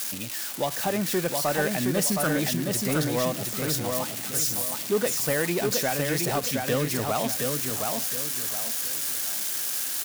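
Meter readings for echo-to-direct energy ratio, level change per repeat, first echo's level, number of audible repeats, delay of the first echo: -3.5 dB, -9.5 dB, -4.0 dB, 4, 0.717 s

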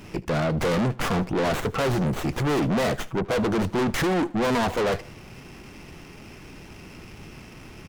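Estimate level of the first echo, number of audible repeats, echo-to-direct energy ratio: -21.0 dB, 2, -20.0 dB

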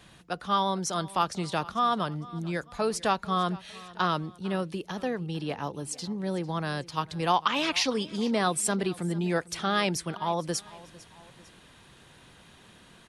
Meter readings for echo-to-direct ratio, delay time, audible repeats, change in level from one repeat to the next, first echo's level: -19.5 dB, 0.45 s, 2, -6.0 dB, -20.5 dB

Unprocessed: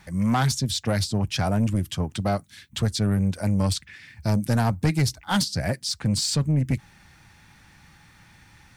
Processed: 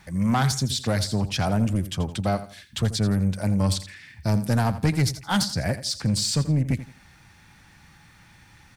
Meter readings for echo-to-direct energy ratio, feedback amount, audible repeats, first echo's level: -13.0 dB, 29%, 3, -13.5 dB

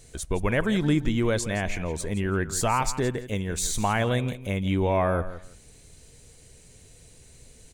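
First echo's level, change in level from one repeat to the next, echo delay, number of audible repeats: -14.0 dB, -14.5 dB, 0.167 s, 2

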